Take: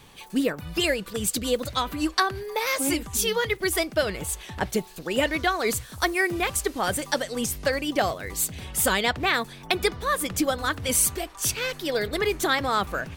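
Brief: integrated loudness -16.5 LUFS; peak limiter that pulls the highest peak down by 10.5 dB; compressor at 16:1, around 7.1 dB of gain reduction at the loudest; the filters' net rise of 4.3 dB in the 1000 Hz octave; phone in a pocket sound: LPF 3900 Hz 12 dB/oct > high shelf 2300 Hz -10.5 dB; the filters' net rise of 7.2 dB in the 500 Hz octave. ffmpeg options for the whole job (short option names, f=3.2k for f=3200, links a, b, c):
-af "equalizer=f=500:t=o:g=8,equalizer=f=1k:t=o:g=5,acompressor=threshold=-18dB:ratio=16,alimiter=limit=-16.5dB:level=0:latency=1,lowpass=3.9k,highshelf=f=2.3k:g=-10.5,volume=12.5dB"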